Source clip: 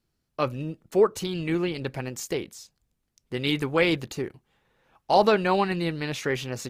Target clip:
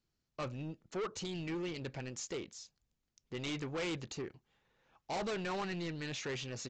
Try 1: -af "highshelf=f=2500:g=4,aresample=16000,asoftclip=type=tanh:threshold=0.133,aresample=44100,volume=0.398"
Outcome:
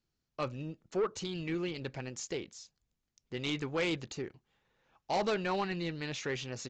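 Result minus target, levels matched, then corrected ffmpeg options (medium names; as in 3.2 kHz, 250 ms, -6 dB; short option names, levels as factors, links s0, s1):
saturation: distortion -7 dB
-af "highshelf=f=2500:g=4,aresample=16000,asoftclip=type=tanh:threshold=0.0473,aresample=44100,volume=0.398"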